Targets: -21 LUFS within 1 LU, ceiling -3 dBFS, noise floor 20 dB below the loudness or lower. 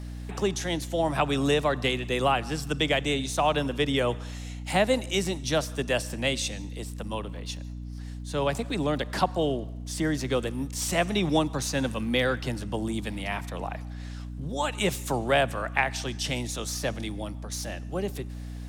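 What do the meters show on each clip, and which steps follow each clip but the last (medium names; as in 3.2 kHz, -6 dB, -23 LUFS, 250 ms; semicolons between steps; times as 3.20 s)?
tick rate 34 per s; hum 60 Hz; highest harmonic 300 Hz; hum level -35 dBFS; loudness -28.0 LUFS; peak level -7.0 dBFS; loudness target -21.0 LUFS
-> de-click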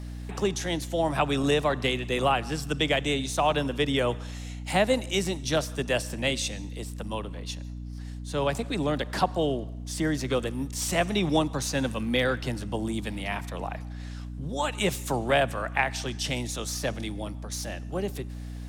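tick rate 0.32 per s; hum 60 Hz; highest harmonic 300 Hz; hum level -35 dBFS
-> hum notches 60/120/180/240/300 Hz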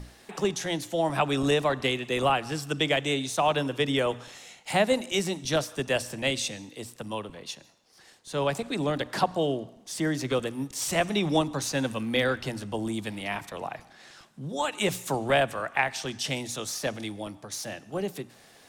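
hum not found; loudness -28.5 LUFS; peak level -7.5 dBFS; loudness target -21.0 LUFS
-> trim +7.5 dB; peak limiter -3 dBFS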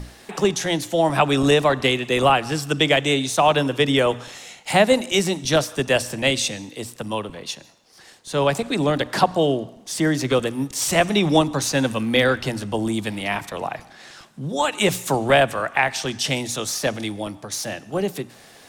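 loudness -21.0 LUFS; peak level -3.0 dBFS; noise floor -48 dBFS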